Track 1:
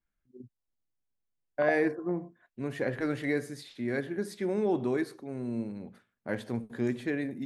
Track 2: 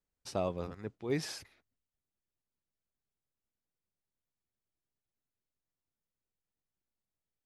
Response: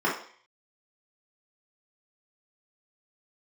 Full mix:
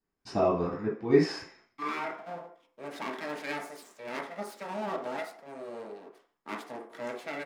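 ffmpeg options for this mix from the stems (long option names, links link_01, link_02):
-filter_complex "[0:a]aeval=exprs='abs(val(0))':channel_layout=same,highpass=frequency=250:width=0.5412,highpass=frequency=250:width=1.3066,adelay=200,volume=0dB,asplit=2[link_01][link_02];[link_02]volume=-17dB[link_03];[1:a]lowpass=8300,bandreject=frequency=3400:width=12,volume=-1.5dB,asplit=3[link_04][link_05][link_06];[link_05]volume=-4dB[link_07];[link_06]apad=whole_len=337753[link_08];[link_01][link_08]sidechaincompress=threshold=-46dB:ratio=8:attack=5.9:release=1030[link_09];[2:a]atrim=start_sample=2205[link_10];[link_03][link_07]amix=inputs=2:normalize=0[link_11];[link_11][link_10]afir=irnorm=-1:irlink=0[link_12];[link_09][link_04][link_12]amix=inputs=3:normalize=0"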